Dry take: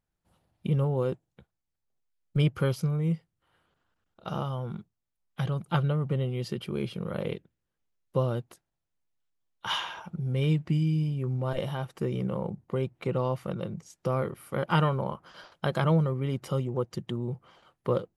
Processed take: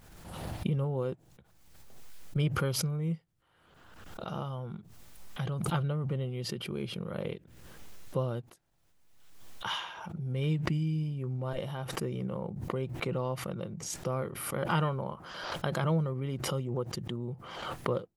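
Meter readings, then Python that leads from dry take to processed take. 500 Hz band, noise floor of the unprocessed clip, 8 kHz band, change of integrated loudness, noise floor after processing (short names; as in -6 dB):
-4.5 dB, -84 dBFS, n/a, -4.0 dB, -66 dBFS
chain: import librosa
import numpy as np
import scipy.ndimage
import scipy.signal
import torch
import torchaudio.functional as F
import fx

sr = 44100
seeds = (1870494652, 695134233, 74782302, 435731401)

y = fx.pre_swell(x, sr, db_per_s=41.0)
y = F.gain(torch.from_numpy(y), -5.0).numpy()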